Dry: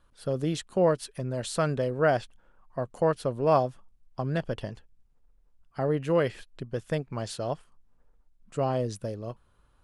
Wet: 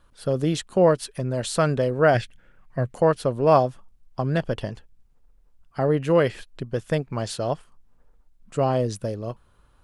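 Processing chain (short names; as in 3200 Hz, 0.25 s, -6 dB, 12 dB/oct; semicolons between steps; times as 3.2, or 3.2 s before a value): 2.14–2.95 graphic EQ 125/1000/2000 Hz +7/-11/+11 dB; gain +5.5 dB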